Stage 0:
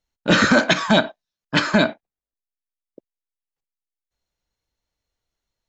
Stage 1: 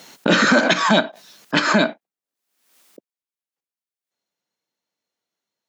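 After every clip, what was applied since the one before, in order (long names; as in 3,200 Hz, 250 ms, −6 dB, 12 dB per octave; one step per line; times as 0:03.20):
high-pass filter 170 Hz 24 dB per octave
background raised ahead of every attack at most 70 dB per second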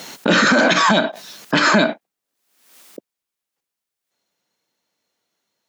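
brickwall limiter −14.5 dBFS, peak gain reduction 11.5 dB
level +9 dB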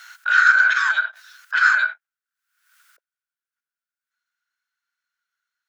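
four-pole ladder high-pass 1,400 Hz, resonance 85%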